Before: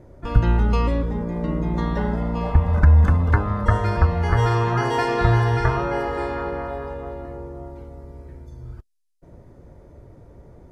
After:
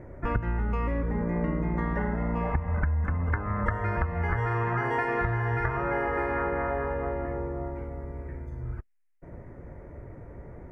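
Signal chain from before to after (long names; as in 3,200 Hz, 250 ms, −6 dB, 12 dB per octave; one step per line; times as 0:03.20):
high shelf with overshoot 2,800 Hz −11 dB, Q 3
downward compressor 10 to 1, threshold −26 dBFS, peak gain reduction 18 dB
level +2 dB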